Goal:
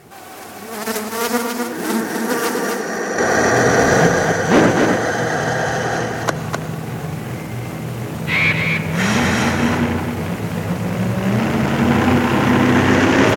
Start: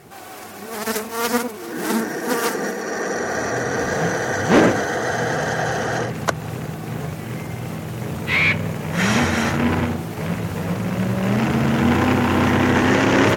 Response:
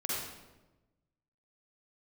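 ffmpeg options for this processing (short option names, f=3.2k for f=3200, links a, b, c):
-filter_complex "[0:a]asettb=1/sr,asplit=3[a][b][c];[a]atrim=end=3.184[d];[b]atrim=start=3.18:end=4.07,asetpts=PTS-STARTPTS,afade=t=in:d=0.004:c=qsin,afade=t=out:st=0.886:d=0.004:c=qsin,acontrast=73[e];[c]atrim=start=4.066[f];[d][e]acrossfade=d=0.004:c1=hsin:c2=qsin[g];[g][f]acrossfade=d=0.004:c1=qsin:c2=hsin,aecho=1:1:254:0.596,asplit=2[h][i];[1:a]atrim=start_sample=2205,asetrate=25578,aresample=44100[j];[i][j]afir=irnorm=-1:irlink=0,volume=-19dB[k];[h][k]amix=inputs=2:normalize=0"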